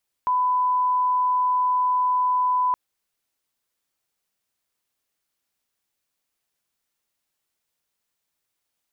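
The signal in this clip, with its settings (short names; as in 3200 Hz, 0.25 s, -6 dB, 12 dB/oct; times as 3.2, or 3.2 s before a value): line-up tone -18 dBFS 2.47 s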